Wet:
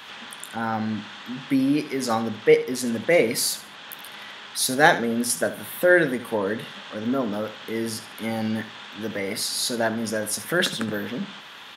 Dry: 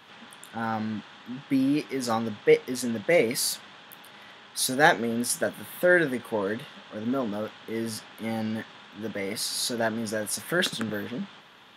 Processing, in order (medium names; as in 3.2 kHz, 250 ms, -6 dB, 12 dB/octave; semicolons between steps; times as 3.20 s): hum notches 60/120/180 Hz; feedback delay 73 ms, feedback 27%, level -14 dB; tape noise reduction on one side only encoder only; trim +3 dB